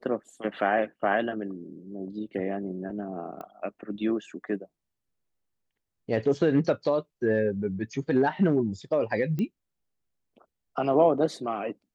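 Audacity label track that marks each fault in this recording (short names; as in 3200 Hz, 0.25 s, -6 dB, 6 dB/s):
3.410000	3.410000	pop -27 dBFS
9.390000	9.390000	pop -20 dBFS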